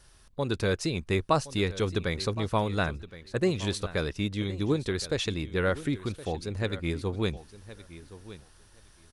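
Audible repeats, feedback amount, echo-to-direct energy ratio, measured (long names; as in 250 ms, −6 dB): 2, 15%, −16.0 dB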